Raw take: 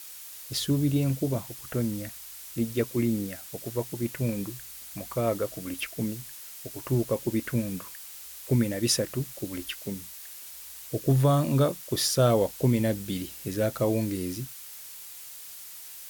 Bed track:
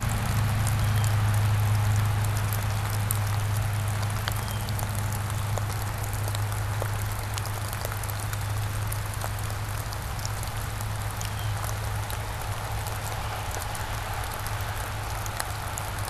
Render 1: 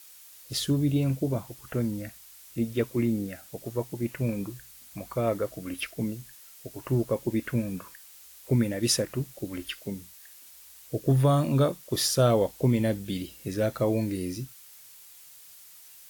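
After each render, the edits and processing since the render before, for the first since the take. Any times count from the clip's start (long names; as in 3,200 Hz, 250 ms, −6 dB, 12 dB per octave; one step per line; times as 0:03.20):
noise reduction from a noise print 7 dB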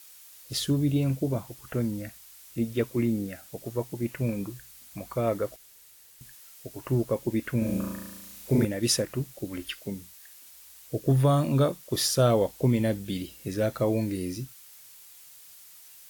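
0:05.56–0:06.21: fill with room tone
0:07.58–0:08.65: flutter between parallel walls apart 6.2 metres, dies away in 1.1 s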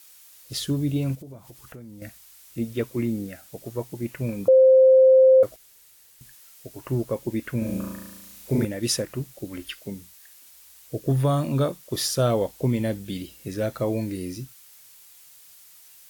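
0:01.15–0:02.02: downward compressor 4 to 1, threshold −41 dBFS
0:04.48–0:05.43: beep over 523 Hz −10.5 dBFS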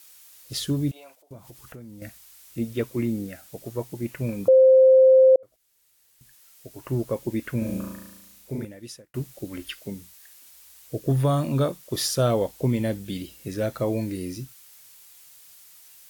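0:00.91–0:01.31: four-pole ladder high-pass 610 Hz, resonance 45%
0:05.36–0:07.09: fade in
0:07.59–0:09.14: fade out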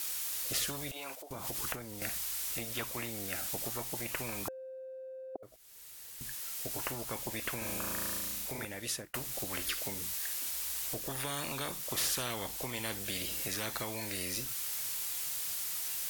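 downward compressor 1.5 to 1, threshold −39 dBFS, peak gain reduction 9 dB
every bin compressed towards the loudest bin 4 to 1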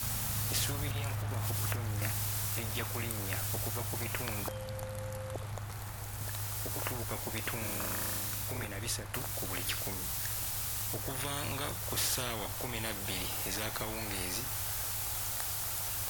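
mix in bed track −12.5 dB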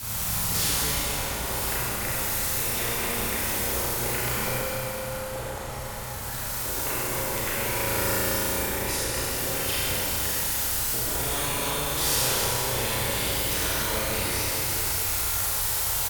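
double-tracking delay 34 ms −3 dB
four-comb reverb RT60 3.7 s, combs from 32 ms, DRR −7.5 dB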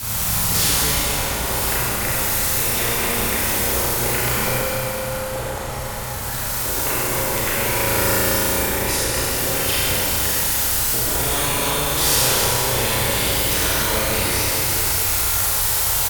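level +7 dB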